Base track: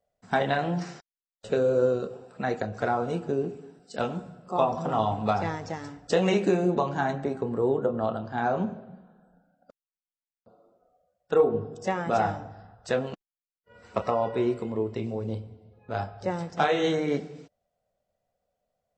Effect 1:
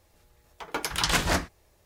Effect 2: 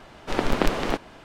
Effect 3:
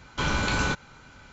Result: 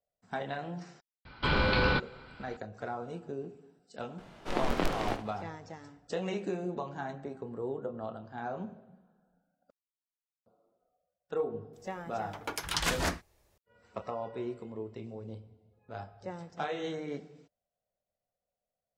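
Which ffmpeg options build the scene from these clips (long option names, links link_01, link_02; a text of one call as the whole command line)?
ffmpeg -i bed.wav -i cue0.wav -i cue1.wav -i cue2.wav -filter_complex "[0:a]volume=-11.5dB[link_01];[3:a]aresample=11025,aresample=44100[link_02];[2:a]aecho=1:1:22|72:0.562|0.299[link_03];[link_02]atrim=end=1.32,asetpts=PTS-STARTPTS,volume=-1.5dB,afade=type=in:duration=0.004:curve=hsin,afade=type=out:start_time=1.316:duration=0.004:curve=hsin,adelay=1250[link_04];[link_03]atrim=end=1.24,asetpts=PTS-STARTPTS,volume=-9dB,afade=type=in:duration=0.004:curve=hsin,afade=type=out:start_time=1.236:duration=0.004:curve=hsin,adelay=4180[link_05];[1:a]atrim=end=1.85,asetpts=PTS-STARTPTS,volume=-6dB,afade=type=in:duration=0.004:curve=hsin,afade=type=out:start_time=1.846:duration=0.004:curve=hsin,adelay=11730[link_06];[link_01][link_04][link_05][link_06]amix=inputs=4:normalize=0" out.wav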